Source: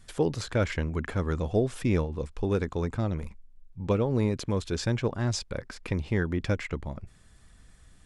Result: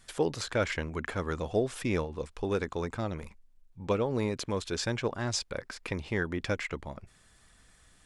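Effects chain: bass shelf 300 Hz -10.5 dB; trim +1.5 dB

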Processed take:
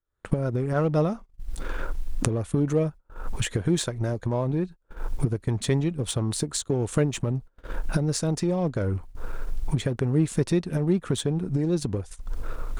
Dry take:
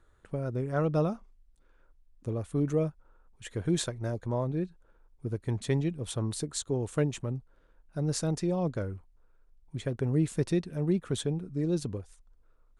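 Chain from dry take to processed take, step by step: recorder AGC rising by 67 dB/s; gate -39 dBFS, range -28 dB; in parallel at -8 dB: crossover distortion -35 dBFS; on the sum: trim +2 dB

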